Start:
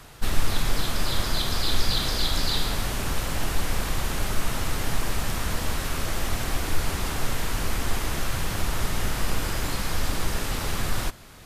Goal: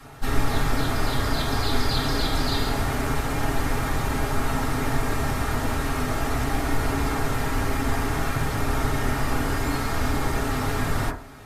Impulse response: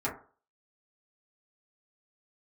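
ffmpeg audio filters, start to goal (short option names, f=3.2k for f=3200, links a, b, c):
-filter_complex "[1:a]atrim=start_sample=2205[a];[0:a][a]afir=irnorm=-1:irlink=0,volume=-3dB"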